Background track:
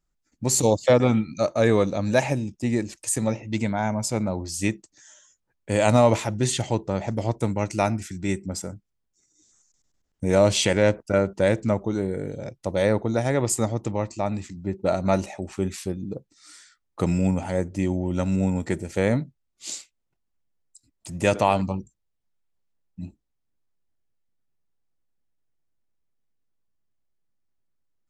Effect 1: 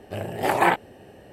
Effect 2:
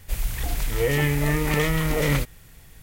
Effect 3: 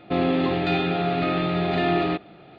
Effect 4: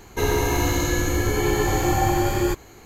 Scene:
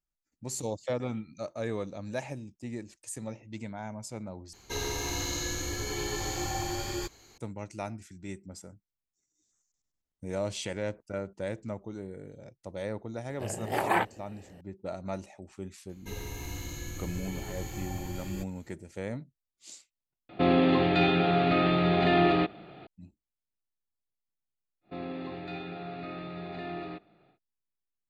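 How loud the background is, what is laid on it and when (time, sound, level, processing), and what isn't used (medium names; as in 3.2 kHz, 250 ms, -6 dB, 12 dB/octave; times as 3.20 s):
background track -14.5 dB
4.53 s: replace with 4 -14 dB + peaking EQ 4.8 kHz +13 dB 1.5 oct
13.29 s: add 1 -7 dB
15.89 s: add 4 -15 dB + high-order bell 720 Hz -8 dB 2.7 oct
20.29 s: replace with 3 -1 dB
24.81 s: add 3 -16 dB, fades 0.10 s + band-stop 3.1 kHz, Q 7
not used: 2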